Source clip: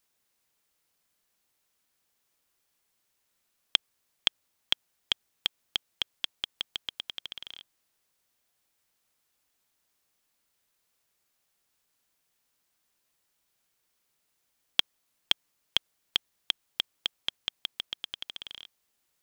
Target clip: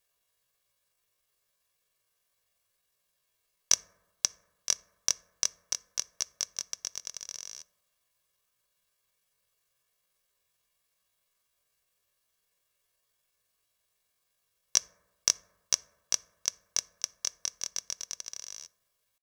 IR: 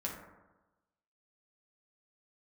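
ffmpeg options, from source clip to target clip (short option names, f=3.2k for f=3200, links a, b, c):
-filter_complex "[0:a]asetrate=78577,aresample=44100,atempo=0.561231,aecho=1:1:1.8:0.69,asplit=2[a][b];[1:a]atrim=start_sample=2205,adelay=7[c];[b][c]afir=irnorm=-1:irlink=0,volume=-17dB[d];[a][d]amix=inputs=2:normalize=0"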